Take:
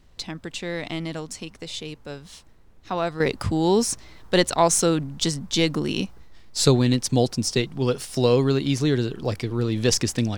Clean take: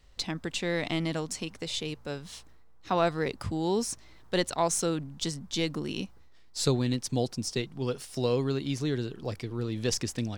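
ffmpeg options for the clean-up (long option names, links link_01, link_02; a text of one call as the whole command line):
ffmpeg -i in.wav -af "agate=range=-21dB:threshold=-38dB,asetnsamples=nb_out_samples=441:pad=0,asendcmd='3.2 volume volume -8.5dB',volume=0dB" out.wav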